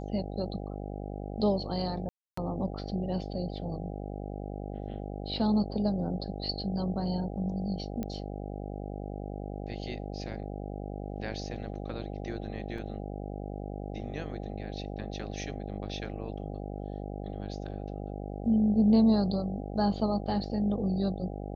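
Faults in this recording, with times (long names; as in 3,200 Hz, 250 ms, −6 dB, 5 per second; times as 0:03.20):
mains buzz 50 Hz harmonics 16 −38 dBFS
0:02.09–0:02.37: drop-out 284 ms
0:08.03: click −22 dBFS
0:12.78: drop-out 3.2 ms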